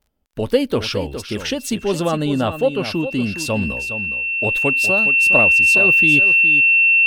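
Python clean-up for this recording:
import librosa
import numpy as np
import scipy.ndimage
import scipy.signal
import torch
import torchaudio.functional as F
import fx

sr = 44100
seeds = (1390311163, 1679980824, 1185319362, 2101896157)

y = fx.fix_declick_ar(x, sr, threshold=6.5)
y = fx.notch(y, sr, hz=2700.0, q=30.0)
y = fx.fix_echo_inverse(y, sr, delay_ms=414, level_db=-10.5)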